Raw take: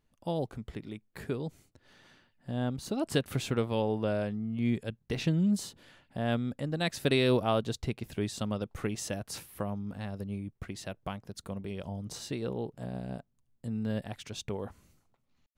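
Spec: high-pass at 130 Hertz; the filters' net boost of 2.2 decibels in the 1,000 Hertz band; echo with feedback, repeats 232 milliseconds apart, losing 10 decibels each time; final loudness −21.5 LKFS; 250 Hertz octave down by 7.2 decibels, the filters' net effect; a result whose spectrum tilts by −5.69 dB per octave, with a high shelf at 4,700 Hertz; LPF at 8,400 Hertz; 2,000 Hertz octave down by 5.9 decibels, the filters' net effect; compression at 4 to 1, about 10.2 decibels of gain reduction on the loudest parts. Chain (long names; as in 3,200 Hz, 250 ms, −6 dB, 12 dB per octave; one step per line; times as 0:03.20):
high-pass filter 130 Hz
low-pass filter 8,400 Hz
parametric band 250 Hz −9 dB
parametric band 1,000 Hz +6 dB
parametric band 2,000 Hz −8 dB
high-shelf EQ 4,700 Hz −8.5 dB
downward compressor 4 to 1, threshold −37 dBFS
repeating echo 232 ms, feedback 32%, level −10 dB
level +21.5 dB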